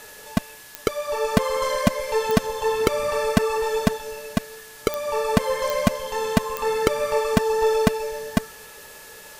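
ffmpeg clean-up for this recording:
ffmpeg -i in.wav -af "adeclick=threshold=4,bandreject=frequency=1700:width=30,afftdn=noise_reduction=26:noise_floor=-43" out.wav

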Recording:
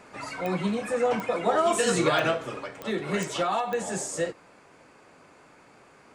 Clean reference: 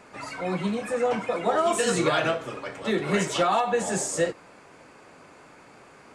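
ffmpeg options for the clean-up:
ffmpeg -i in.wav -af "adeclick=threshold=4,asetnsamples=nb_out_samples=441:pad=0,asendcmd='2.66 volume volume 4dB',volume=0dB" out.wav

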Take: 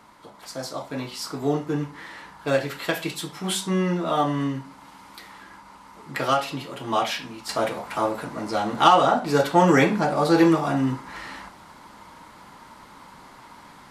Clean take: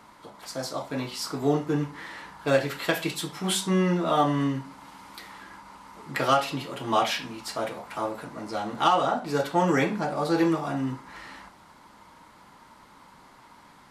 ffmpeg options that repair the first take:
ffmpeg -i in.wav -af "asetnsamples=nb_out_samples=441:pad=0,asendcmd='7.49 volume volume -6dB',volume=0dB" out.wav

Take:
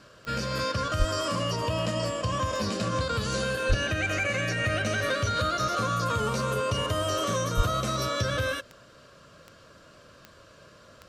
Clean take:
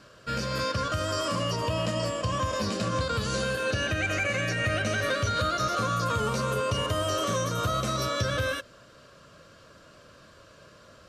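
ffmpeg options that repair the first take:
ffmpeg -i in.wav -filter_complex "[0:a]adeclick=threshold=4,asplit=3[link_01][link_02][link_03];[link_01]afade=type=out:start_time=0.98:duration=0.02[link_04];[link_02]highpass=frequency=140:width=0.5412,highpass=frequency=140:width=1.3066,afade=type=in:start_time=0.98:duration=0.02,afade=type=out:start_time=1.1:duration=0.02[link_05];[link_03]afade=type=in:start_time=1.1:duration=0.02[link_06];[link_04][link_05][link_06]amix=inputs=3:normalize=0,asplit=3[link_07][link_08][link_09];[link_07]afade=type=out:start_time=3.68:duration=0.02[link_10];[link_08]highpass=frequency=140:width=0.5412,highpass=frequency=140:width=1.3066,afade=type=in:start_time=3.68:duration=0.02,afade=type=out:start_time=3.8:duration=0.02[link_11];[link_09]afade=type=in:start_time=3.8:duration=0.02[link_12];[link_10][link_11][link_12]amix=inputs=3:normalize=0,asplit=3[link_13][link_14][link_15];[link_13]afade=type=out:start_time=7.56:duration=0.02[link_16];[link_14]highpass=frequency=140:width=0.5412,highpass=frequency=140:width=1.3066,afade=type=in:start_time=7.56:duration=0.02,afade=type=out:start_time=7.68:duration=0.02[link_17];[link_15]afade=type=in:start_time=7.68:duration=0.02[link_18];[link_16][link_17][link_18]amix=inputs=3:normalize=0" out.wav

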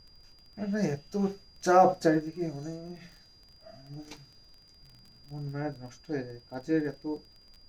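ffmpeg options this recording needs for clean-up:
ffmpeg -i in.wav -af "adeclick=threshold=4,bandreject=frequency=4800:width=30,agate=range=-21dB:threshold=-50dB" out.wav

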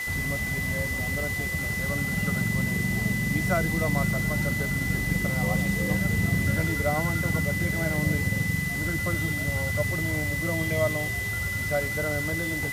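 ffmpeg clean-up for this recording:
ffmpeg -i in.wav -af "bandreject=frequency=2000:width=30,afwtdn=0.011" out.wav

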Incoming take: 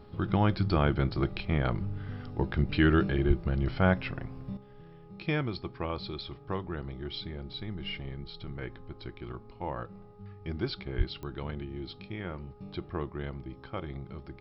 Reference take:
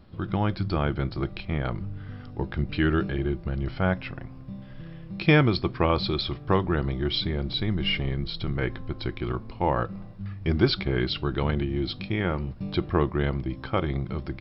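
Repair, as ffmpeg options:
ffmpeg -i in.wav -filter_complex "[0:a]adeclick=threshold=4,bandreject=frequency=414.7:width_type=h:width=4,bandreject=frequency=829.4:width_type=h:width=4,bandreject=frequency=1244.1:width_type=h:width=4,asplit=3[link_01][link_02][link_03];[link_01]afade=type=out:start_time=3.27:duration=0.02[link_04];[link_02]highpass=frequency=140:width=0.5412,highpass=frequency=140:width=1.3066,afade=type=in:start_time=3.27:duration=0.02,afade=type=out:start_time=3.39:duration=0.02[link_05];[link_03]afade=type=in:start_time=3.39:duration=0.02[link_06];[link_04][link_05][link_06]amix=inputs=3:normalize=0,asplit=3[link_07][link_08][link_09];[link_07]afade=type=out:start_time=10.97:duration=0.02[link_10];[link_08]highpass=frequency=140:width=0.5412,highpass=frequency=140:width=1.3066,afade=type=in:start_time=10.97:duration=0.02,afade=type=out:start_time=11.09:duration=0.02[link_11];[link_09]afade=type=in:start_time=11.09:duration=0.02[link_12];[link_10][link_11][link_12]amix=inputs=3:normalize=0,asetnsamples=nb_out_samples=441:pad=0,asendcmd='4.57 volume volume 11.5dB',volume=0dB" out.wav

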